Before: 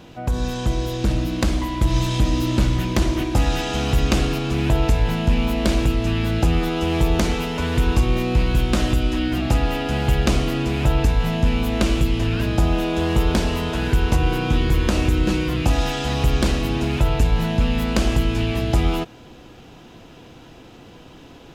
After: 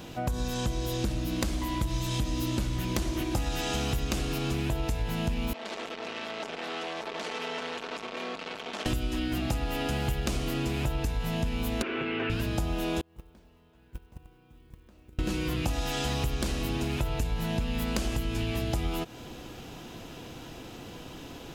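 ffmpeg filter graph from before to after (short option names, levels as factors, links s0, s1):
-filter_complex "[0:a]asettb=1/sr,asplit=3[s0][s1][s2];[s0]atrim=end=5.534[s3];[s1]atrim=start=5.53:end=8.86,asetpts=PTS-STARTPTS,afade=t=in:d=0.004:c=qsin,afade=t=out:st=3.326:d=0.004:c=qsin,aeval=exprs='(tanh(31.6*val(0)+0.55)-tanh(0.55))/31.6':c=same,highpass=420,lowpass=3900,aecho=1:1:4.5:0.43,atrim=end_sample=146853[s4];[s2]atrim=start=8.856[s5];[s3][s4]acrossfade=d=0.004:c1=hsin:c2=qsin[s6];[s6][s5]acrossfade=d=0.004:c1=qsin:c2=hsin,asettb=1/sr,asplit=3[s7][s8][s9];[s7]atrim=end=11.824[s10];[s8]atrim=start=11.82:end=12.3,asetpts=PTS-STARTPTS,afade=t=in:d=0.004:c=qsin,afade=t=out:st=0.476:d=0.004:c=qsin,highpass=340,equalizer=f=380:t=q:w=4:g=8,equalizer=f=600:t=q:w=4:g=-6,equalizer=f=1500:t=q:w=4:g=7,equalizer=f=2400:t=q:w=4:g=5,lowpass=f=2600:w=0.5412,lowpass=f=2600:w=1.3066,aecho=1:1:7.5:0.49,atrim=end_sample=21168[s11];[s9]atrim=start=12.296[s12];[s10][s11]acrossfade=d=0.004:c1=hsin:c2=qsin[s13];[s13][s12]acrossfade=d=0.004:c1=qsin:c2=hsin,asettb=1/sr,asplit=3[s14][s15][s16];[s14]atrim=end=13.014[s17];[s15]atrim=start=13.01:end=15.19,asetpts=PTS-STARTPTS,afade=t=in:d=0.004:c=qsin,afade=t=out:st=2.176:d=0.004:c=qsin,lowpass=f=2200:p=1,agate=range=0.0141:threshold=0.282:ratio=16:release=100:detection=peak,acrusher=bits=8:mode=log:mix=0:aa=0.000001[s18];[s16]atrim=start=15.186[s19];[s17][s18]acrossfade=d=0.004:c1=hsin:c2=qsin[s20];[s20][s19]acrossfade=d=0.004:c1=qsin:c2=hsin,highshelf=f=6600:g=10,acompressor=threshold=0.0447:ratio=6"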